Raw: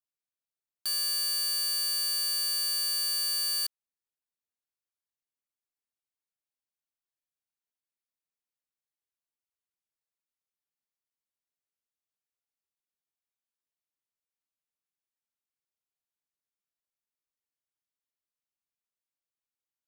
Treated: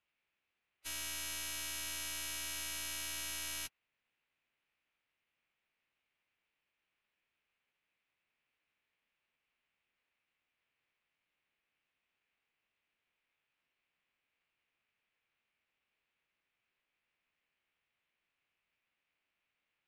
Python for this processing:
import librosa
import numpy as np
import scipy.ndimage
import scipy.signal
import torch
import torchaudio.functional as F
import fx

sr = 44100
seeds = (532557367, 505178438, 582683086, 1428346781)

y = fx.lowpass_res(x, sr, hz=2500.0, q=2.9)
y = (np.mod(10.0 ** (48.0 / 20.0) * y + 1.0, 2.0) - 1.0) / 10.0 ** (48.0 / 20.0)
y = fx.pitch_keep_formants(y, sr, semitones=-10.0)
y = y * librosa.db_to_amplitude(12.0)